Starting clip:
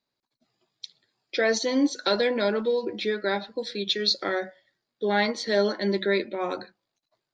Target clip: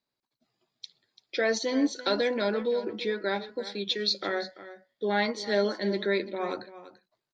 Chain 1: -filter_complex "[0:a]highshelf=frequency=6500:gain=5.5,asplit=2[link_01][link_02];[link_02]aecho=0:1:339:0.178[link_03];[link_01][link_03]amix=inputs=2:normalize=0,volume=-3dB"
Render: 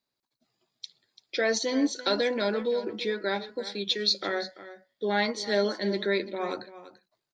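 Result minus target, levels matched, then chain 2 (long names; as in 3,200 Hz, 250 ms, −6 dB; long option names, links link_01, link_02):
8,000 Hz band +3.5 dB
-filter_complex "[0:a]highshelf=frequency=6500:gain=-3,asplit=2[link_01][link_02];[link_02]aecho=0:1:339:0.178[link_03];[link_01][link_03]amix=inputs=2:normalize=0,volume=-3dB"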